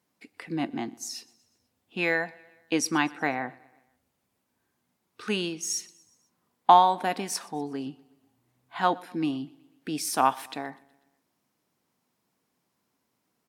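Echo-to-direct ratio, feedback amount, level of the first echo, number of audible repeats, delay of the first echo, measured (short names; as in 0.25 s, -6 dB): -22.5 dB, 55%, -24.0 dB, 3, 0.123 s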